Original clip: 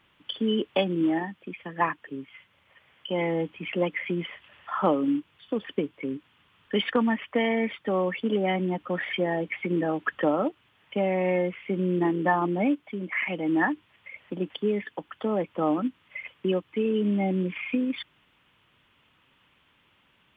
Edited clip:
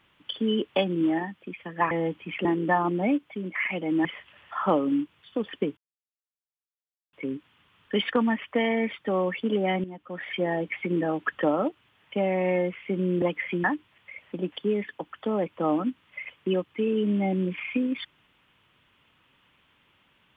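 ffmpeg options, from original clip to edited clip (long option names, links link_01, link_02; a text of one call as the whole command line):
ffmpeg -i in.wav -filter_complex "[0:a]asplit=8[link_01][link_02][link_03][link_04][link_05][link_06][link_07][link_08];[link_01]atrim=end=1.912[link_09];[link_02]atrim=start=3.248:end=3.792[link_10];[link_03]atrim=start=12.018:end=13.622[link_11];[link_04]atrim=start=4.208:end=5.93,asetpts=PTS-STARTPTS,afade=type=out:start_time=1.718:duration=0.004:curve=hsin,apad=pad_dur=1.36[link_12];[link_05]atrim=start=5.93:end=8.64,asetpts=PTS-STARTPTS,afade=type=in:duration=0.004:curve=hsin,afade=type=out:start_time=2.706:duration=0.004:curve=hsin:silence=0.237137[link_13];[link_06]atrim=start=8.64:end=12.022,asetpts=PTS-STARTPTS,afade=type=in:duration=0.61:curve=qua:silence=0.237137[link_14];[link_07]atrim=start=3.788:end=4.212[link_15];[link_08]atrim=start=13.618[link_16];[link_09][link_10]acrossfade=duration=0.004:curve1=hsin:curve2=hsin[link_17];[link_17][link_11]acrossfade=duration=0.004:curve1=hsin:curve2=hsin[link_18];[link_12][link_13][link_14]concat=n=3:v=0:a=1[link_19];[link_18][link_19]acrossfade=duration=0.004:curve1=hsin:curve2=hsin[link_20];[link_20][link_15]acrossfade=duration=0.004:curve1=hsin:curve2=hsin[link_21];[link_21][link_16]acrossfade=duration=0.004:curve1=hsin:curve2=hsin" out.wav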